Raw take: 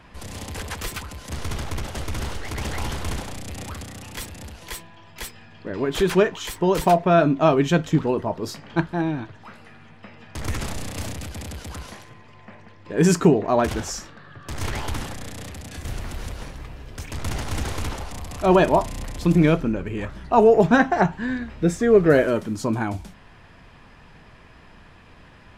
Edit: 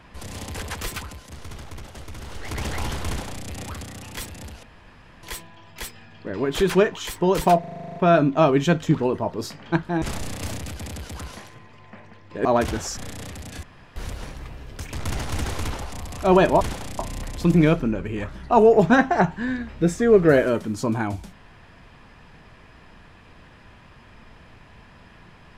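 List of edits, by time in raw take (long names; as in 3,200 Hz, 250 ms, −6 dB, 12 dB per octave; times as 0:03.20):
0:01.05–0:02.52: duck −9 dB, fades 0.26 s
0:03.08–0:03.46: duplicate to 0:18.80
0:04.63: splice in room tone 0.60 s
0:07.00: stutter 0.04 s, 10 plays
0:09.06–0:10.57: remove
0:13.00–0:13.48: remove
0:14.00–0:15.16: remove
0:15.82–0:16.15: fill with room tone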